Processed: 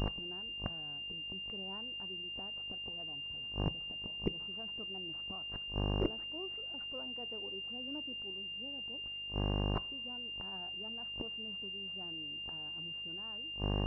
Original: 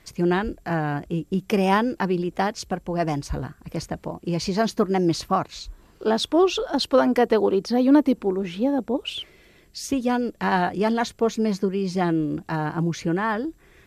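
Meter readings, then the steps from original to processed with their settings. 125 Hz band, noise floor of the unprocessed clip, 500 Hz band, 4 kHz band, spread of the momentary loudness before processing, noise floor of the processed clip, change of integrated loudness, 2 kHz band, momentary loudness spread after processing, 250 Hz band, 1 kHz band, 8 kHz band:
-13.5 dB, -55 dBFS, -23.0 dB, no reading, 12 LU, -43 dBFS, -15.5 dB, -8.0 dB, 4 LU, -22.5 dB, -24.0 dB, under -35 dB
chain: mains buzz 50 Hz, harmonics 24, -34 dBFS -5 dB/octave; inverted gate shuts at -22 dBFS, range -31 dB; two-slope reverb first 0.23 s, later 1.5 s, from -18 dB, DRR 15.5 dB; class-D stage that switches slowly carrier 2.8 kHz; trim +1 dB

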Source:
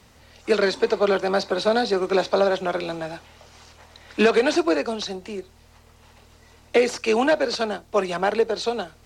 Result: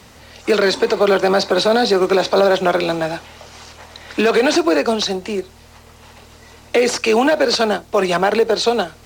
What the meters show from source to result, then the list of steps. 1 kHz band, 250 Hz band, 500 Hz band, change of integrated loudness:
+6.5 dB, +6.5 dB, +5.5 dB, +6.0 dB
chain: bass shelf 71 Hz -6.5 dB; in parallel at -11 dB: short-mantissa float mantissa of 2-bit; on the sum: peak limiter -14 dBFS, peak gain reduction 9.5 dB; trim +8 dB

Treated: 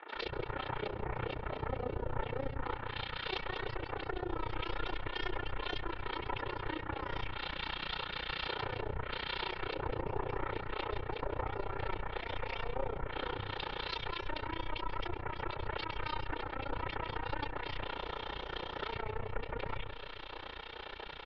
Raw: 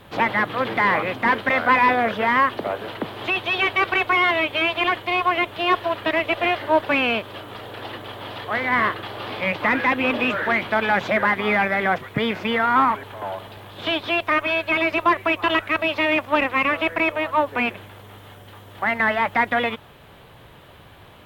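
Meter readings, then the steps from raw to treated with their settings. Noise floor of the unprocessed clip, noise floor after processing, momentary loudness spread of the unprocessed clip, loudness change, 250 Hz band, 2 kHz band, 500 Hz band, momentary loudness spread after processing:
-47 dBFS, -47 dBFS, 13 LU, -19.0 dB, -19.0 dB, -21.5 dB, -16.5 dB, 3 LU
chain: one-sided wavefolder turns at -18 dBFS; spectral gate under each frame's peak -10 dB weak; low-pass that closes with the level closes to 600 Hz, closed at -23.5 dBFS; steep low-pass 5 kHz 48 dB/octave; bass shelf 99 Hz +7 dB; comb 2.2 ms, depth 54%; compression, threshold -38 dBFS, peak gain reduction 13.5 dB; peak limiter -32 dBFS, peak gain reduction 8.5 dB; three bands offset in time mids, highs, lows 80/140 ms, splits 220/2000 Hz; AM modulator 30 Hz, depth 85%; on a send: filtered feedback delay 133 ms, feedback 78%, low-pass 2 kHz, level -11.5 dB; on the sum: trim +8.5 dB

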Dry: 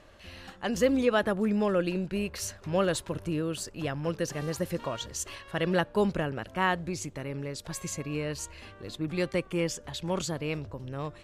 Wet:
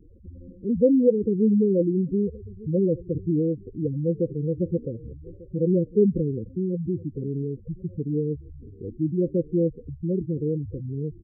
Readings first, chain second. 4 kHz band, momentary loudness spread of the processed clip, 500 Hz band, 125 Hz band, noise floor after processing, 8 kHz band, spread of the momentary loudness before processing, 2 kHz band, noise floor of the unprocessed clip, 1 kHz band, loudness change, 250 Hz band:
under -40 dB, 14 LU, +5.5 dB, +7.5 dB, -47 dBFS, under -40 dB, 11 LU, under -40 dB, -52 dBFS, under -40 dB, +5.5 dB, +7.5 dB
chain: steep low-pass 520 Hz 96 dB/octave; on a send: delay 1193 ms -21.5 dB; on the sum: spectral gate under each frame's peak -10 dB strong; trim +8 dB

